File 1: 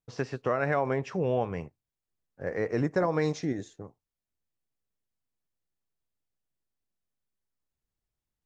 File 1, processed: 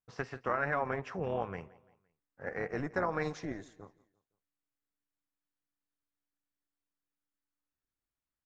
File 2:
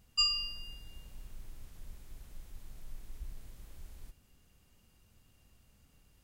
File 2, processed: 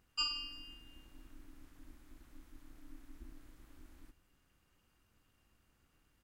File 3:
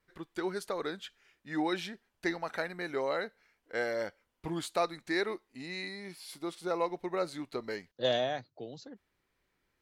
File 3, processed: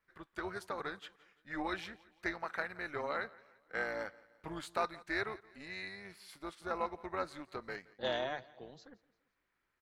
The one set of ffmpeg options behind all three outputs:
-filter_complex "[0:a]equalizer=f=1400:t=o:w=1.6:g=9.5,tremolo=f=290:d=0.621,asplit=2[s0][s1];[s1]aecho=0:1:171|342|513:0.0794|0.035|0.0154[s2];[s0][s2]amix=inputs=2:normalize=0,volume=0.473"

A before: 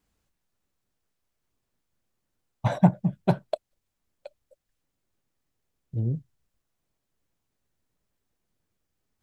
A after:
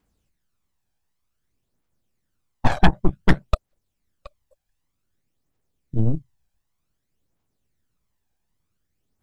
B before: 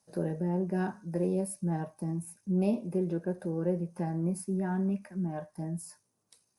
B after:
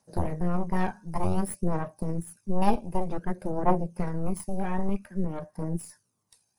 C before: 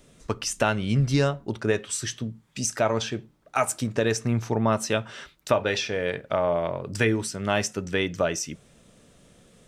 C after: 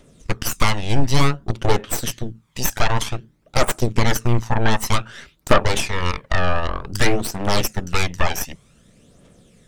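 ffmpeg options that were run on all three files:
-af "aeval=exprs='0.531*(cos(1*acos(clip(val(0)/0.531,-1,1)))-cos(1*PI/2))+0.237*(cos(8*acos(clip(val(0)/0.531,-1,1)))-cos(8*PI/2))':c=same,acontrast=36,aphaser=in_gain=1:out_gain=1:delay=1.3:decay=0.48:speed=0.54:type=triangular,volume=0.531"

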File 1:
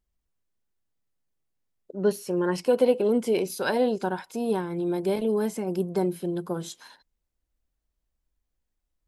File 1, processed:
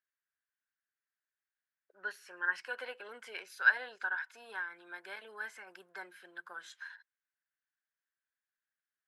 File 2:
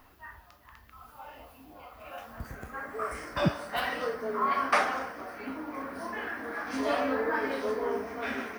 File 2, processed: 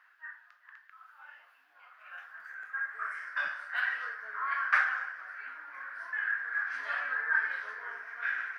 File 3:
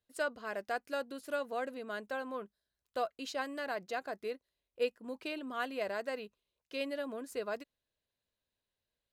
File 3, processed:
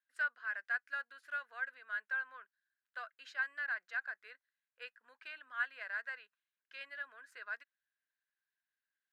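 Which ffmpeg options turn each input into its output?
-af "highpass=f=1600:t=q:w=6.6,aemphasis=mode=reproduction:type=75kf,volume=0.501"

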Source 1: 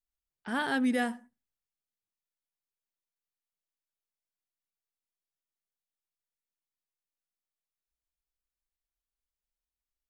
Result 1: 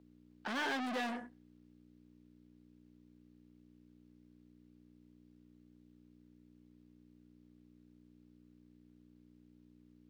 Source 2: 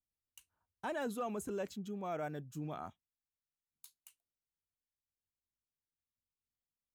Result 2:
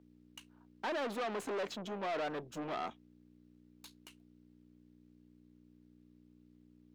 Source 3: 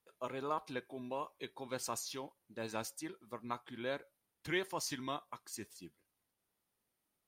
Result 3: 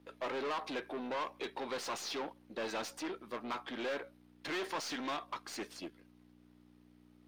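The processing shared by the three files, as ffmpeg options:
-filter_complex "[0:a]aeval=exprs='val(0)+0.000891*(sin(2*PI*60*n/s)+sin(2*PI*2*60*n/s)/2+sin(2*PI*3*60*n/s)/3+sin(2*PI*4*60*n/s)/4+sin(2*PI*5*60*n/s)/5)':c=same,aeval=exprs='(tanh(282*val(0)+0.5)-tanh(0.5))/282':c=same,acrossover=split=240 5100:gain=0.0794 1 0.158[s0][s1][s2];[s0][s1][s2]amix=inputs=3:normalize=0,volume=5.62"

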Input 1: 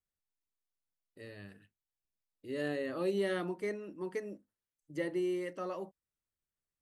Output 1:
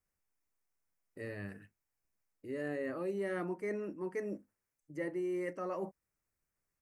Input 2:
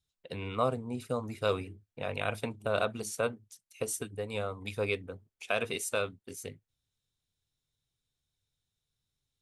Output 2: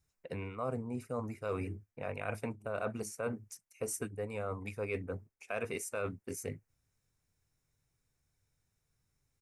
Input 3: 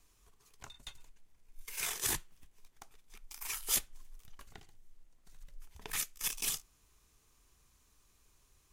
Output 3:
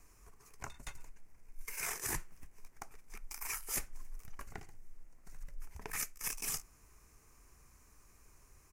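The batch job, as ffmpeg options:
-af "firequalizer=gain_entry='entry(2300,0);entry(3400,-17);entry(5300,-3)':delay=0.05:min_phase=1,areverse,acompressor=threshold=0.00708:ratio=4,areverse,volume=2.24"

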